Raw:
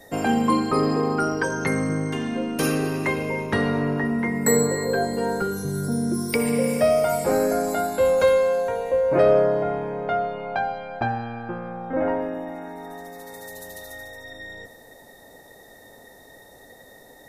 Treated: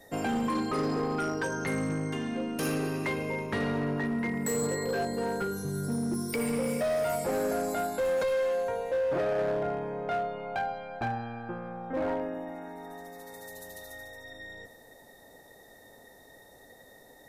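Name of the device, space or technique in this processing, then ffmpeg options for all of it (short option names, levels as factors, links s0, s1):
limiter into clipper: -af "alimiter=limit=0.211:level=0:latency=1:release=13,asoftclip=type=hard:threshold=0.112,volume=0.501"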